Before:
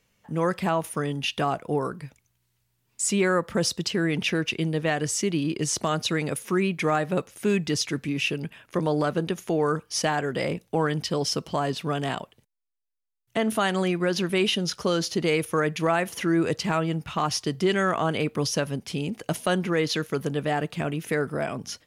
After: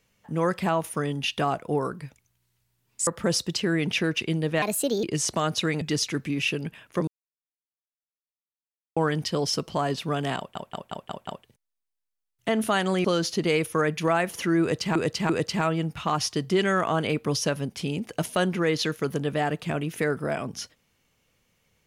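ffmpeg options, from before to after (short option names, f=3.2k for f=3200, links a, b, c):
-filter_complex "[0:a]asplit=15[a][b][c][d][e][f][g][h][i][j][k][l][m][n][o];[a]atrim=end=3.072[p];[b]atrim=start=3.378:end=4.934[q];[c]atrim=start=4.93:end=5.51,asetpts=PTS-STARTPTS,asetrate=61740,aresample=44100[r];[d]atrim=start=5.506:end=6.292[s];[e]atrim=start=7.598:end=8.86,asetpts=PTS-STARTPTS,afade=t=out:st=1.258:d=0.004:c=hsin[t];[f]atrim=start=8.86:end=10.75,asetpts=PTS-STARTPTS,volume=0[u];[g]atrim=start=10.75:end=12.342,asetpts=PTS-STARTPTS,afade=t=in:d=0.004:c=hsin[v];[h]atrim=start=12.158:end=12.342[w];[i]atrim=start=12.158:end=12.342[x];[j]atrim=start=12.158:end=12.342[y];[k]atrim=start=12.158:end=12.342[z];[l]atrim=start=12.158:end=13.932[aa];[m]atrim=start=14.828:end=16.742[ab];[n]atrim=start=16.398:end=16.742[ac];[o]atrim=start=16.398[ad];[p][q]acrossfade=d=0.004:c1=hsin:c2=hsin[ae];[ae][r]acrossfade=d=0.004:c1=hsin:c2=hsin[af];[af][s]acrossfade=d=0.004:c1=hsin:c2=hsin[ag];[t][u][v]concat=n=3:v=0:a=1[ah];[ag][ah]acrossfade=d=0.004:c1=hsin:c2=hsin[ai];[ai][w]acrossfade=d=0.004:c1=hsin:c2=hsin[aj];[aj][x]acrossfade=d=0.004:c1=hsin:c2=hsin[ak];[ak][y]acrossfade=d=0.004:c1=hsin:c2=hsin[al];[al][z]acrossfade=d=0.004:c1=hsin:c2=hsin[am];[am][aa]acrossfade=d=0.004:c1=hsin:c2=hsin[an];[an][ab]acrossfade=d=0.004:c1=hsin:c2=hsin[ao];[ao][ac]acrossfade=d=0.004:c1=hsin:c2=hsin[ap];[ap][ad]acrossfade=d=0.004:c1=hsin:c2=hsin"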